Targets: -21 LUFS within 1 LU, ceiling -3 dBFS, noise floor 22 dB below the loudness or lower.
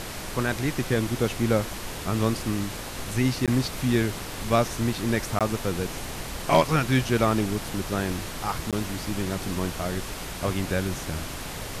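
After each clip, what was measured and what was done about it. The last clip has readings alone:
dropouts 3; longest dropout 17 ms; noise floor -36 dBFS; noise floor target -49 dBFS; loudness -27.0 LUFS; peak -8.0 dBFS; loudness target -21.0 LUFS
-> interpolate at 3.46/5.39/8.71, 17 ms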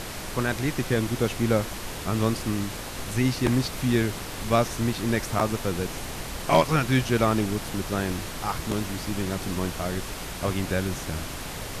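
dropouts 0; noise floor -36 dBFS; noise floor target -49 dBFS
-> noise print and reduce 13 dB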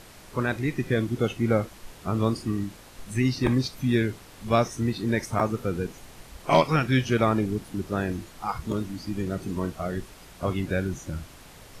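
noise floor -48 dBFS; noise floor target -49 dBFS
-> noise print and reduce 6 dB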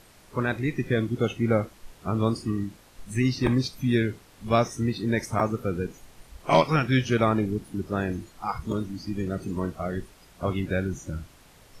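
noise floor -54 dBFS; loudness -27.0 LUFS; peak -8.0 dBFS; loudness target -21.0 LUFS
-> gain +6 dB; limiter -3 dBFS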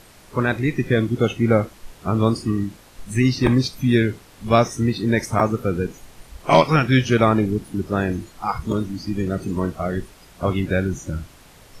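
loudness -21.0 LUFS; peak -3.0 dBFS; noise floor -48 dBFS

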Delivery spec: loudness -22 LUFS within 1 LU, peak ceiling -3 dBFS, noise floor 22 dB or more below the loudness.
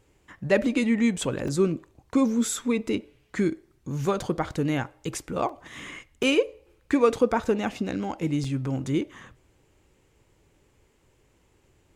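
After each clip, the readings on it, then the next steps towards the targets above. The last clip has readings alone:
dropouts 5; longest dropout 3.6 ms; loudness -26.5 LUFS; peak -8.0 dBFS; loudness target -22.0 LUFS
-> interpolate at 1.48/5.49/6.23/7.19/8.44, 3.6 ms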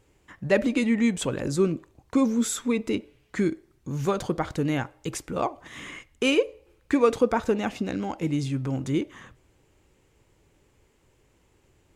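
dropouts 0; loudness -26.5 LUFS; peak -8.0 dBFS; loudness target -22.0 LUFS
-> gain +4.5 dB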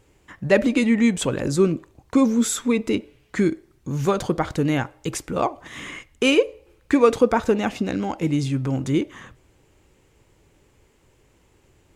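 loudness -22.0 LUFS; peak -3.5 dBFS; noise floor -60 dBFS

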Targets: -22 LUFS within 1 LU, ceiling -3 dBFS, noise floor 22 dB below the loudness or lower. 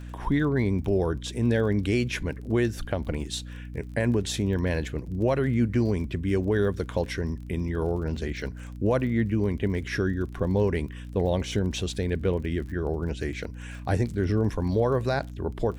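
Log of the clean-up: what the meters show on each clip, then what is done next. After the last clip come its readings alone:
ticks 33/s; hum 60 Hz; harmonics up to 300 Hz; hum level -36 dBFS; loudness -27.5 LUFS; peak -13.5 dBFS; loudness target -22.0 LUFS
-> de-click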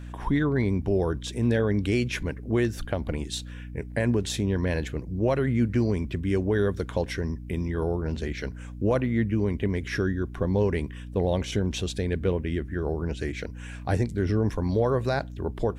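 ticks 0/s; hum 60 Hz; harmonics up to 300 Hz; hum level -36 dBFS
-> de-hum 60 Hz, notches 5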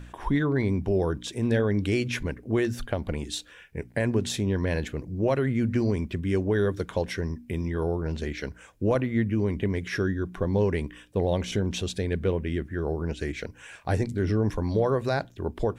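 hum none; loudness -28.0 LUFS; peak -13.0 dBFS; loudness target -22.0 LUFS
-> gain +6 dB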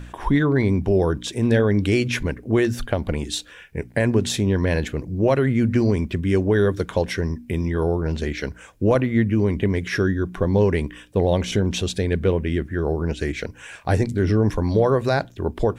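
loudness -22.0 LUFS; peak -7.0 dBFS; noise floor -45 dBFS

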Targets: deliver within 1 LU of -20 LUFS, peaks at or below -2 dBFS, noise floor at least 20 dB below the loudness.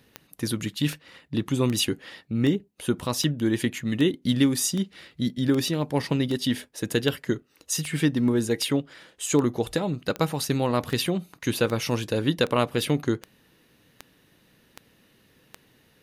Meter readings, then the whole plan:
clicks 21; loudness -26.0 LUFS; peak -8.5 dBFS; loudness target -20.0 LUFS
-> de-click; gain +6 dB

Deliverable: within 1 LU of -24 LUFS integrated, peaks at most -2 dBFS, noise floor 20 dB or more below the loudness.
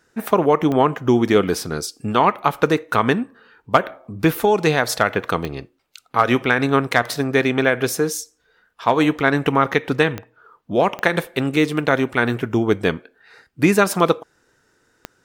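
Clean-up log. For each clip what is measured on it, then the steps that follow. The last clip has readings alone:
clicks 5; loudness -19.0 LUFS; peak -1.0 dBFS; loudness target -24.0 LUFS
-> de-click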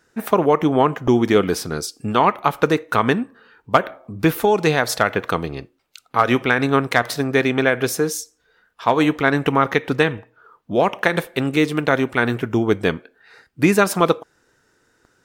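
clicks 2; loudness -19.0 LUFS; peak -1.0 dBFS; loudness target -24.0 LUFS
-> gain -5 dB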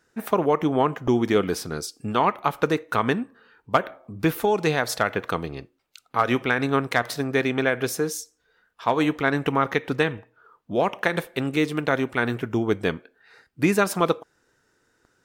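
loudness -24.0 LUFS; peak -6.0 dBFS; noise floor -68 dBFS

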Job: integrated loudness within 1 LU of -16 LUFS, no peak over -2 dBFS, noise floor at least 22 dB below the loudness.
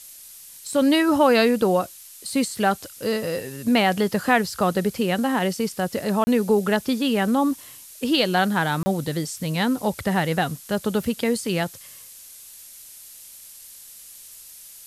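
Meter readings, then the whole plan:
dropouts 2; longest dropout 30 ms; noise floor -44 dBFS; noise floor target -45 dBFS; loudness -22.5 LUFS; peak -5.0 dBFS; loudness target -16.0 LUFS
-> interpolate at 6.24/8.83, 30 ms; denoiser 6 dB, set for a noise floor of -44 dBFS; gain +6.5 dB; limiter -2 dBFS

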